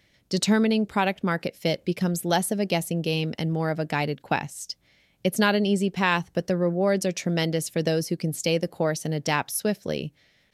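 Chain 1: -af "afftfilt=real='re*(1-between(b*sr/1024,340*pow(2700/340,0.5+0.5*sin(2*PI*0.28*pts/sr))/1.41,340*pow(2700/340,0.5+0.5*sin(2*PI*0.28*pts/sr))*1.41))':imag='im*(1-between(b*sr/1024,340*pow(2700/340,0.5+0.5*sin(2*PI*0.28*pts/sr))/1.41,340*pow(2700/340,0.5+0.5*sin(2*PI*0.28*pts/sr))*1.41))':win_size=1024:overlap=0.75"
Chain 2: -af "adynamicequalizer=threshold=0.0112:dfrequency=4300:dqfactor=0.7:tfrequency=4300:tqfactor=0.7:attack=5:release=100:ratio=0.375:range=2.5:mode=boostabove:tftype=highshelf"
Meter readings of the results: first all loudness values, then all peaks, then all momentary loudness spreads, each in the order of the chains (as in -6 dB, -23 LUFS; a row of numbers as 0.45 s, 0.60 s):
-26.0 LUFS, -25.0 LUFS; -7.5 dBFS, -6.0 dBFS; 7 LU, 7 LU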